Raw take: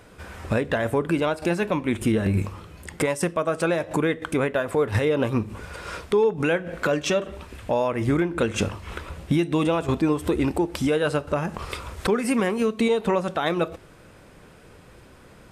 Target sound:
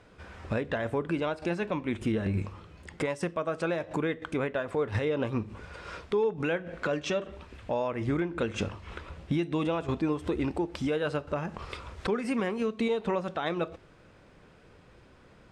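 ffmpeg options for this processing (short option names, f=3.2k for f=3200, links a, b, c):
-af "lowpass=5.7k,volume=-7dB"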